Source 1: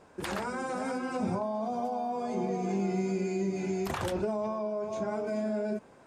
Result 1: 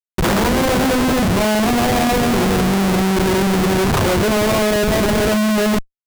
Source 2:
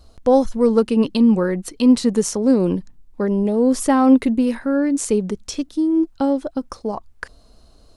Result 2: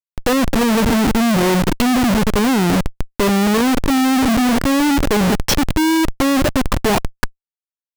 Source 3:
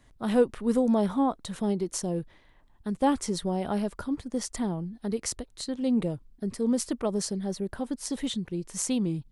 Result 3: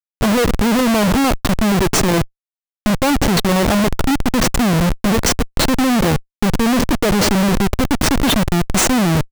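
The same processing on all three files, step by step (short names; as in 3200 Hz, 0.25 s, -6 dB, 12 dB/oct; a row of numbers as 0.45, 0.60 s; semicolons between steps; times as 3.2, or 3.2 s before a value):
feedback echo 88 ms, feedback 53%, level -21 dB; treble ducked by the level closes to 360 Hz, closed at -12.5 dBFS; Schmitt trigger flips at -34.5 dBFS; match loudness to -16 LUFS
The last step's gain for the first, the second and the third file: +17.0, +5.5, +15.5 dB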